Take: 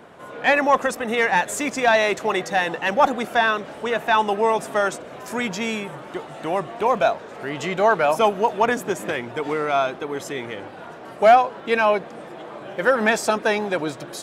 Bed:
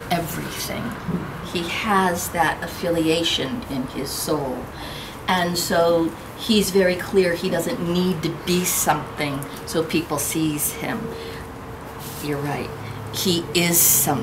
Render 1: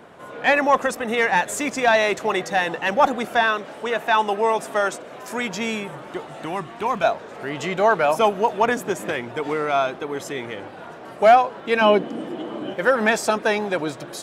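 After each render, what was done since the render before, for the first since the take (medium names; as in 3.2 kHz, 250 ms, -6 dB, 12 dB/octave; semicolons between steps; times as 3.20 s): 3.43–5.54 s: bass shelf 120 Hz -12 dB; 6.45–7.04 s: peaking EQ 560 Hz -10.5 dB 0.72 oct; 11.81–12.74 s: small resonant body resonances 270/3000 Hz, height 16 dB, ringing for 30 ms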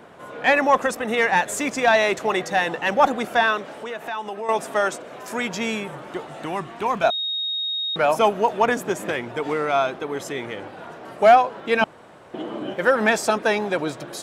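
3.79–4.49 s: compression 2.5:1, threshold -31 dBFS; 7.10–7.96 s: bleep 3.74 kHz -23 dBFS; 11.84–12.34 s: room tone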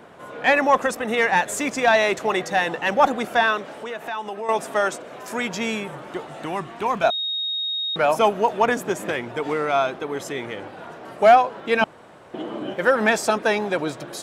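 no audible change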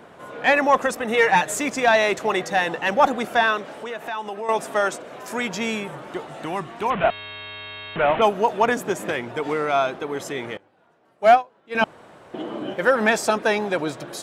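1.14–1.58 s: comb 6.5 ms; 6.90–8.22 s: one-bit delta coder 16 kbps, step -21.5 dBFS; 10.57–11.75 s: upward expansion 2.5:1, over -24 dBFS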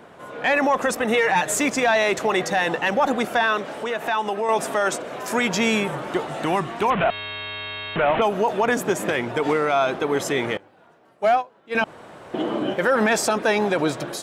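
level rider gain up to 7 dB; peak limiter -11 dBFS, peak gain reduction 9.5 dB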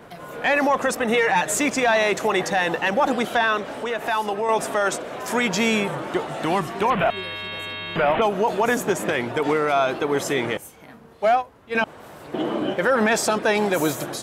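add bed -19.5 dB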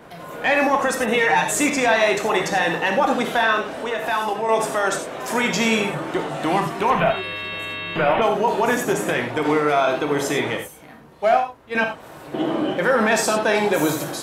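gated-style reverb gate 120 ms flat, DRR 3 dB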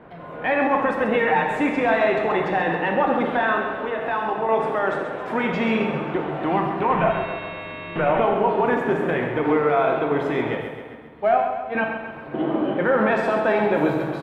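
distance through air 500 m; feedback delay 134 ms, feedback 55%, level -7.5 dB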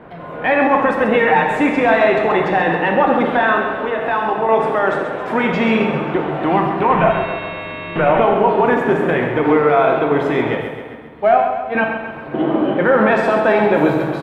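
trim +6 dB; peak limiter -2 dBFS, peak gain reduction 1 dB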